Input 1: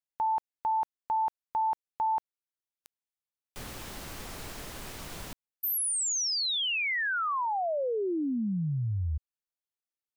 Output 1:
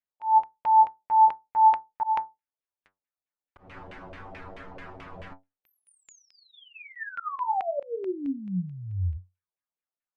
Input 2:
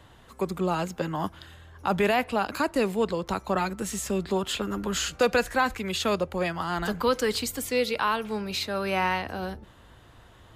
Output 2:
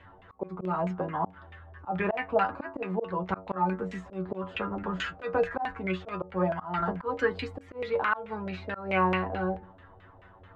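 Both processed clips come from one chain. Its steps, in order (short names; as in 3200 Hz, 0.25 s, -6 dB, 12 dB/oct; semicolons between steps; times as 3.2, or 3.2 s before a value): metallic resonator 91 Hz, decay 0.22 s, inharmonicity 0.002; LFO low-pass saw down 4.6 Hz 570–2500 Hz; auto swell 0.198 s; gain +6 dB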